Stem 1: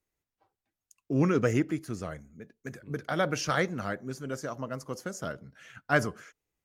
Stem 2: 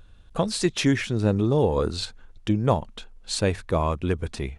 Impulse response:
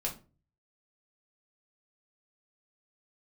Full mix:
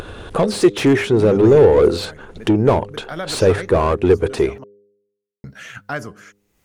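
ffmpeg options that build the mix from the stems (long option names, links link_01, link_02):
-filter_complex "[0:a]volume=-3.5dB,asplit=3[link_01][link_02][link_03];[link_01]atrim=end=4.64,asetpts=PTS-STARTPTS,afade=type=out:start_time=4.636:duration=0.004:curve=hsin[link_04];[link_02]atrim=start=4.64:end=5.44,asetpts=PTS-STARTPTS,volume=0[link_05];[link_03]atrim=start=5.44,asetpts=PTS-STARTPTS,afade=type=in:duration=0.004:curve=hsin[link_06];[link_04][link_05][link_06]concat=n=3:v=0:a=1[link_07];[1:a]asplit=2[link_08][link_09];[link_09]highpass=frequency=720:poles=1,volume=25dB,asoftclip=type=tanh:threshold=-7.5dB[link_10];[link_08][link_10]amix=inputs=2:normalize=0,lowpass=frequency=1100:poles=1,volume=-6dB,equalizer=frequency=100:width_type=o:width=0.67:gain=6,equalizer=frequency=400:width_type=o:width=0.67:gain=10,equalizer=frequency=10000:width_type=o:width=0.67:gain=9,volume=-0.5dB[link_11];[link_07][link_11]amix=inputs=2:normalize=0,bandreject=frequency=101.5:width_type=h:width=4,bandreject=frequency=203:width_type=h:width=4,bandreject=frequency=304.5:width_type=h:width=4,bandreject=frequency=406:width_type=h:width=4,bandreject=frequency=507.5:width_type=h:width=4,acompressor=mode=upward:threshold=-20dB:ratio=2.5"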